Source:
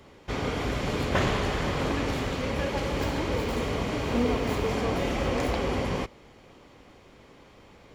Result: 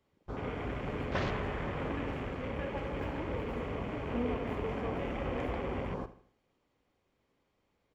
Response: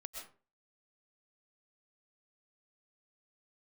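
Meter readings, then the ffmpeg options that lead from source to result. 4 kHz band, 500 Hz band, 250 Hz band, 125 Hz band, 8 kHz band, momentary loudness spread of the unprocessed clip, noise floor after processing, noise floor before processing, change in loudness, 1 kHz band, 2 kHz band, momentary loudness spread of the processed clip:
−14.5 dB, −8.0 dB, −8.0 dB, −8.0 dB, below −20 dB, 4 LU, −78 dBFS, −54 dBFS, −8.0 dB, −8.0 dB, −9.0 dB, 4 LU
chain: -af "afwtdn=0.0158,aecho=1:1:78|156|234|312:0.178|0.0711|0.0285|0.0114,volume=-8dB"

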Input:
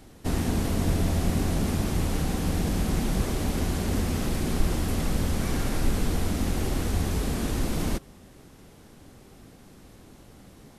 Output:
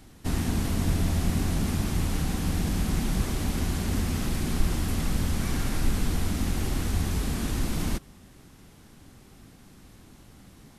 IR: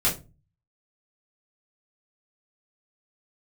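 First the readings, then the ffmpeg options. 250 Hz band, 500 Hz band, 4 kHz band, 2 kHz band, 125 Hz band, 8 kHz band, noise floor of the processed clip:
−1.5 dB, −5.0 dB, 0.0 dB, −0.5 dB, −0.5 dB, 0.0 dB, −52 dBFS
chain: -af "equalizer=frequency=510:width_type=o:width=1.2:gain=-6.5"

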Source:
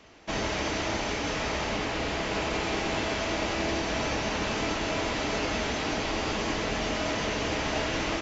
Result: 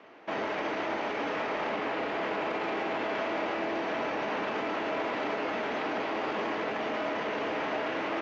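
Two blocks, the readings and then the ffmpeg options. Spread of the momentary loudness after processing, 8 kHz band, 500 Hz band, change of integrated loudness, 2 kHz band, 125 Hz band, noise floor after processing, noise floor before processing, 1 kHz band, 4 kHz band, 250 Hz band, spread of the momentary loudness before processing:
1 LU, can't be measured, −0.5 dB, −2.5 dB, −2.5 dB, −14.0 dB, −34 dBFS, −31 dBFS, 0.0 dB, −9.5 dB, −3.5 dB, 1 LU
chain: -af "acontrast=89,alimiter=limit=-17.5dB:level=0:latency=1:release=16,highpass=300,lowpass=2000,volume=-3.5dB"

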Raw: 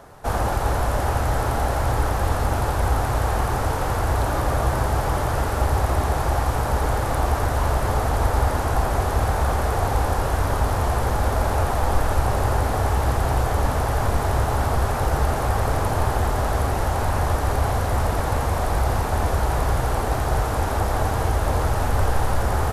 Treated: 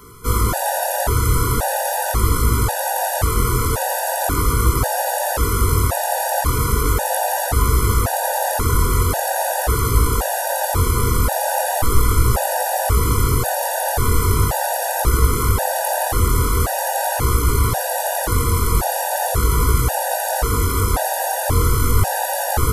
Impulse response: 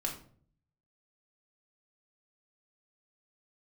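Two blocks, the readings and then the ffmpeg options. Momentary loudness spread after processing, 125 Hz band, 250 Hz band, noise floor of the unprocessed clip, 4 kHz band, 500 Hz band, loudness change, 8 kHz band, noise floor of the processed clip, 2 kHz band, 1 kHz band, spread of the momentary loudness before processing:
3 LU, +2.5 dB, +2.5 dB, −24 dBFS, +6.5 dB, +2.5 dB, +4.0 dB, +12.5 dB, −23 dBFS, +3.5 dB, +3.0 dB, 1 LU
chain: -af "flanger=delay=17.5:depth=6.9:speed=0.4,aemphasis=mode=production:type=50fm,afftfilt=real='re*gt(sin(2*PI*0.93*pts/sr)*(1-2*mod(floor(b*sr/1024/490),2)),0)':imag='im*gt(sin(2*PI*0.93*pts/sr)*(1-2*mod(floor(b*sr/1024/490),2)),0)':win_size=1024:overlap=0.75,volume=9dB"

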